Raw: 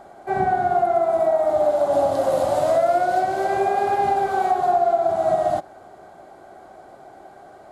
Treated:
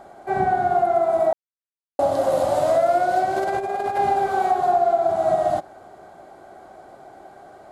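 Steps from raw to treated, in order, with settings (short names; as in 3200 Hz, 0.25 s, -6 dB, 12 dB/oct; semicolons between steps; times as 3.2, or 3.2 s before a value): 1.33–1.99 mute; 3.36–3.99 negative-ratio compressor -23 dBFS, ratio -0.5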